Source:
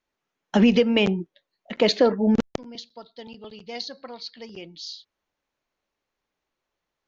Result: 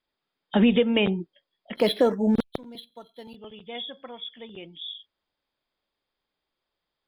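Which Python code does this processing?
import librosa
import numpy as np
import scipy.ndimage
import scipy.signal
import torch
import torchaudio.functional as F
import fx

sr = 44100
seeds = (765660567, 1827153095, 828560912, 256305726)

y = fx.freq_compress(x, sr, knee_hz=3100.0, ratio=4.0)
y = fx.resample_linear(y, sr, factor=6, at=(1.75, 3.36))
y = y * librosa.db_to_amplitude(-2.0)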